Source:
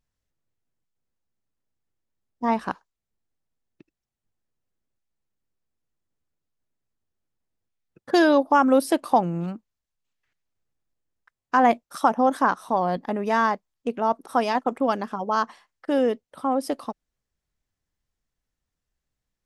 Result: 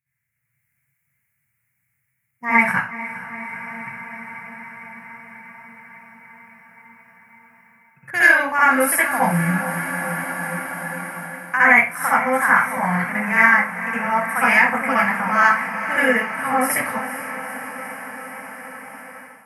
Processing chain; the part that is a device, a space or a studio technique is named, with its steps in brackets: FFT filter 140 Hz 0 dB, 310 Hz -28 dB, 1 kHz -12 dB, 2.2 kHz +9 dB, 3.6 kHz -26 dB, 11 kHz +4 dB; echo that smears into a reverb 453 ms, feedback 77%, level -13.5 dB; far laptop microphone (reverberation RT60 0.40 s, pre-delay 60 ms, DRR -8.5 dB; high-pass 120 Hz 24 dB/octave; level rider gain up to 11 dB)

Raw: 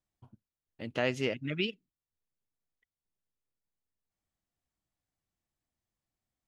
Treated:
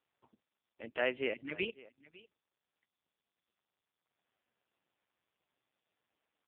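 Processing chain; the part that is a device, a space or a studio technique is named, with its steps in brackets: satellite phone (band-pass 360–3300 Hz; delay 552 ms -20.5 dB; AMR-NB 5.15 kbps 8 kHz)

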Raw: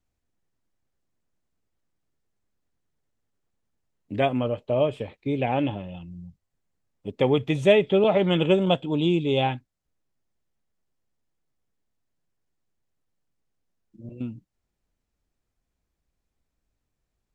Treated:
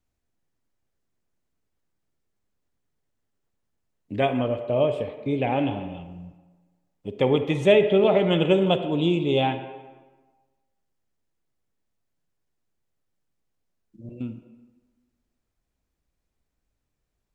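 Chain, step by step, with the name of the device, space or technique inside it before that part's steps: filtered reverb send (on a send: high-pass 220 Hz 12 dB/octave + low-pass 3.2 kHz + reverberation RT60 1.3 s, pre-delay 37 ms, DRR 8 dB)

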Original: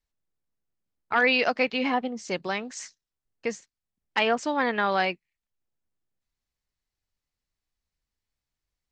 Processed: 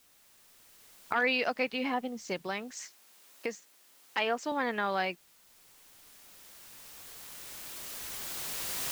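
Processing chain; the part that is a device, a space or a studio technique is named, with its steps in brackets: cheap recorder with automatic gain (white noise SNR 27 dB; recorder AGC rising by 7.8 dB/s); 2.73–4.52 s: high-pass 240 Hz 12 dB/octave; trim -6.5 dB

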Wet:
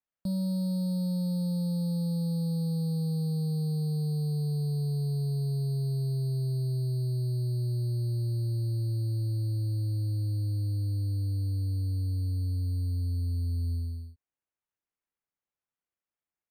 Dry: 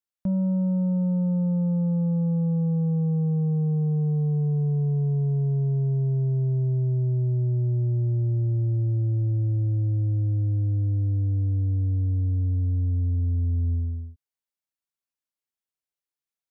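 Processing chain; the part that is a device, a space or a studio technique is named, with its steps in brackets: crushed at another speed (playback speed 1.25×; sample-and-hold 8×; playback speed 0.8×); trim -6 dB

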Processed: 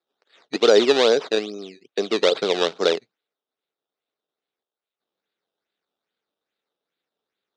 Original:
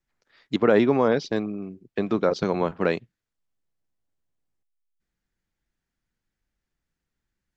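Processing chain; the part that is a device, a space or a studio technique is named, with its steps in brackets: circuit-bent sampling toy (decimation with a swept rate 14×, swing 100% 2.4 Hz; cabinet simulation 410–5900 Hz, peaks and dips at 430 Hz +6 dB, 1 kHz -5 dB, 1.8 kHz -4 dB, 3.7 kHz +10 dB); trim +3.5 dB

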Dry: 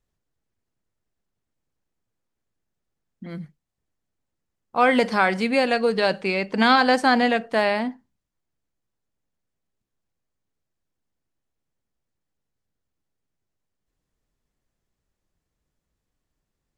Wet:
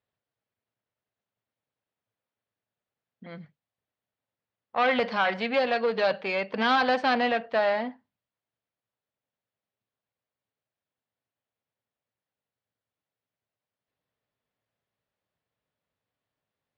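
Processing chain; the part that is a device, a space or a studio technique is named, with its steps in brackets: guitar amplifier (valve stage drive 17 dB, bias 0.45; tone controls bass -10 dB, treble +5 dB; cabinet simulation 91–3700 Hz, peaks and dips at 110 Hz +9 dB, 340 Hz -7 dB, 600 Hz +3 dB)

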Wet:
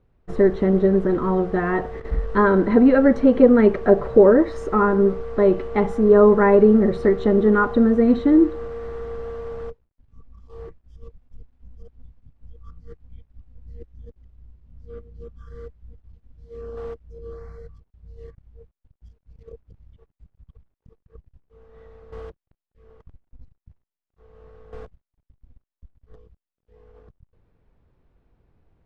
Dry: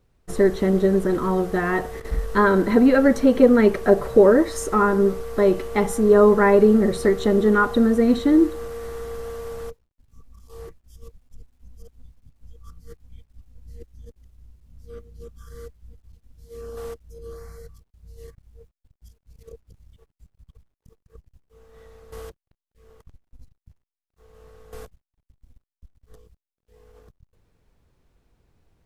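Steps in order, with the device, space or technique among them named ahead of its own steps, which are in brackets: phone in a pocket (low-pass 3.7 kHz 12 dB/octave; treble shelf 2.2 kHz -9 dB); trim +1.5 dB

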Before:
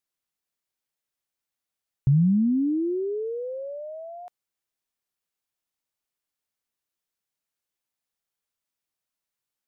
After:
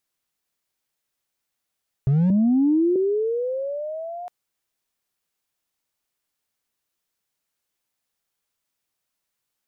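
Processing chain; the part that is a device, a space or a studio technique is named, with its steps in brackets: limiter into clipper (peak limiter -20.5 dBFS, peak gain reduction 6.5 dB; hard clipper -22.5 dBFS, distortion -21 dB); 2.30–2.96 s: steep low-pass 720 Hz 36 dB/octave; trim +6.5 dB

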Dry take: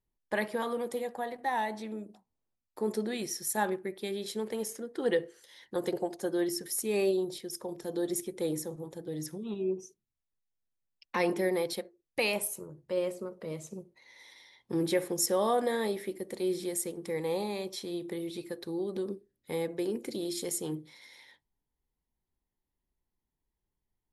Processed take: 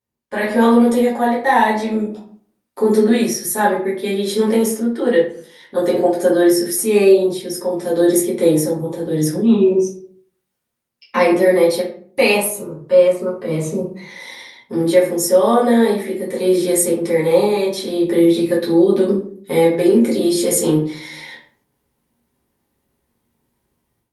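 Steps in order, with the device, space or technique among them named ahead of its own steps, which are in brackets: far-field microphone of a smart speaker (reverberation RT60 0.50 s, pre-delay 6 ms, DRR -8 dB; high-pass 110 Hz 12 dB/octave; level rider gain up to 15.5 dB; trim -1 dB; Opus 48 kbps 48 kHz)

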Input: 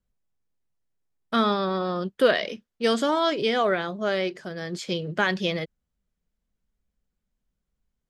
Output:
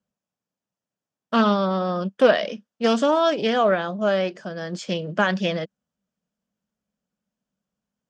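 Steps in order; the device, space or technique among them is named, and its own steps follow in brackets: full-range speaker at full volume (loudspeaker Doppler distortion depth 0.22 ms; cabinet simulation 170–7400 Hz, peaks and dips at 200 Hz +5 dB, 380 Hz -6 dB, 600 Hz +4 dB, 2.1 kHz -7 dB, 4 kHz -7 dB); trim +3 dB

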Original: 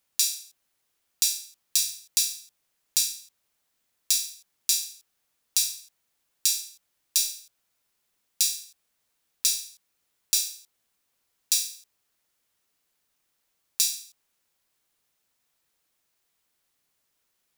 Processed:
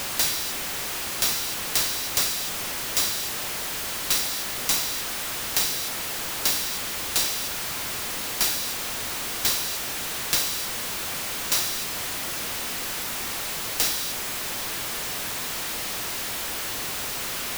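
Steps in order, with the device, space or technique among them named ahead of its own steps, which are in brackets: early CD player with a faulty converter (jump at every zero crossing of -20.5 dBFS; sampling jitter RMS 0.032 ms); trim -2 dB

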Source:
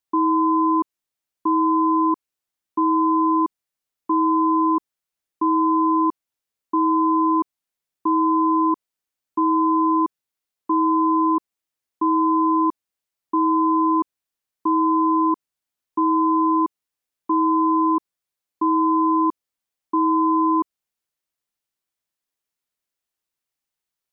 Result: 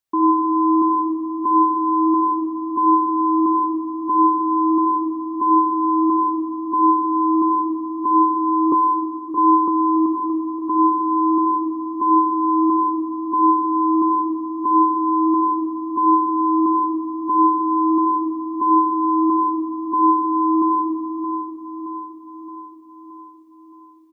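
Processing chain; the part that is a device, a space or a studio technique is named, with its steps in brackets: stairwell (reverberation RT60 2.3 s, pre-delay 53 ms, DRR -1.5 dB); 8.72–9.68 s: steep high-pass 240 Hz 48 dB/octave; feedback delay 621 ms, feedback 56%, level -10 dB

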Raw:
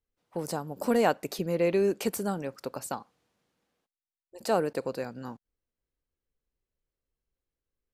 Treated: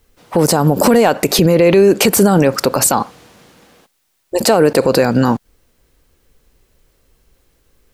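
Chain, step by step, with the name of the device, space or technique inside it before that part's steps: loud club master (compression 2:1, threshold -30 dBFS, peak gain reduction 7 dB; hard clipper -20 dBFS, distortion -32 dB; loudness maximiser +32 dB); trim -1 dB

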